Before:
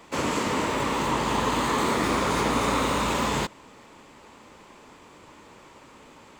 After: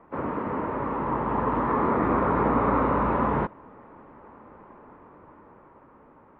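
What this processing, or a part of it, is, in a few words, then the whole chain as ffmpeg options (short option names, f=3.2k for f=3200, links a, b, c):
action camera in a waterproof case: -af "lowpass=f=1.5k:w=0.5412,lowpass=f=1.5k:w=1.3066,dynaudnorm=f=270:g=11:m=5dB,volume=-2.5dB" -ar 32000 -c:a aac -b:a 48k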